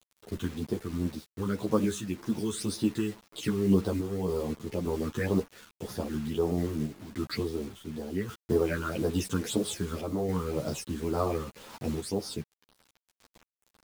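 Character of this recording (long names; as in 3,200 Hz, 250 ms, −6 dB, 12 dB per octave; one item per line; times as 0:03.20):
phaser sweep stages 8, 1.9 Hz, lowest notch 630–2,600 Hz
a quantiser's noise floor 8 bits, dither none
sample-and-hold tremolo
a shimmering, thickened sound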